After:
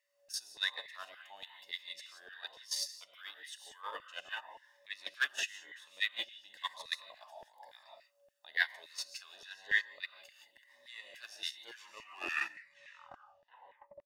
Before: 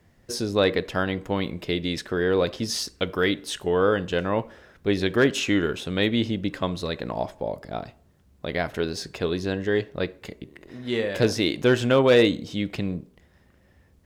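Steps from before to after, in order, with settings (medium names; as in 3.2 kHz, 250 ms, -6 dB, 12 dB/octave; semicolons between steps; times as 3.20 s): tape stop on the ending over 2.52 s; treble shelf 2.3 kHz +8.5 dB; gated-style reverb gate 200 ms rising, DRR 1.5 dB; in parallel at +1.5 dB: compression 16:1, threshold -29 dBFS, peak gain reduction 20 dB; on the sum: peaking EQ 190 Hz -13 dB 2.9 oct; whistle 570 Hz -39 dBFS; gain riding within 3 dB 0.5 s; gate -18 dBFS, range -28 dB; LFO high-pass saw down 3.5 Hz 480–2000 Hz; comb 1.1 ms, depth 57%; Shepard-style phaser rising 1 Hz; trim -1.5 dB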